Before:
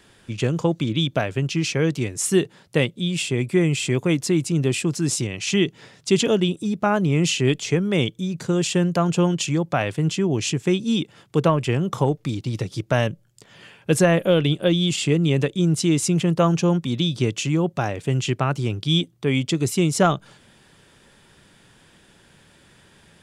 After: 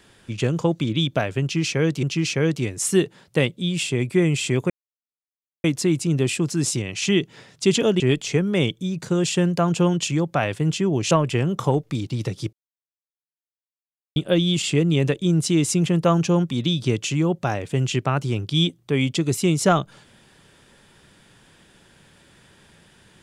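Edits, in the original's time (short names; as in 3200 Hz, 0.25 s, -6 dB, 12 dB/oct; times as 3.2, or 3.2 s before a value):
1.42–2.03 loop, 2 plays
4.09 insert silence 0.94 s
6.45–7.38 cut
10.49–11.45 cut
12.87–14.5 mute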